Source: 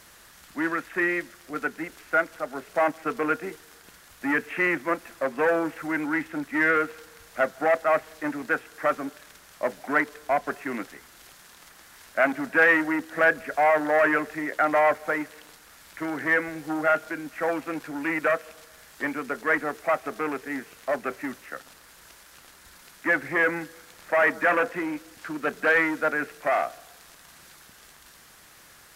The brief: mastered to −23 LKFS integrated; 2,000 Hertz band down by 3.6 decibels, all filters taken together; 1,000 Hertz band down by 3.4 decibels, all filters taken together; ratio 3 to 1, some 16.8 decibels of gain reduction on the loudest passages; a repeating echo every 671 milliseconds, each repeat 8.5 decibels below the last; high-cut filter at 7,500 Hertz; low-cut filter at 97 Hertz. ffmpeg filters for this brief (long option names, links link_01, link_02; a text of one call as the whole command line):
ffmpeg -i in.wav -af "highpass=97,lowpass=7500,equalizer=frequency=1000:width_type=o:gain=-4,equalizer=frequency=2000:width_type=o:gain=-3,acompressor=threshold=-43dB:ratio=3,aecho=1:1:671|1342|2013|2684:0.376|0.143|0.0543|0.0206,volume=19.5dB" out.wav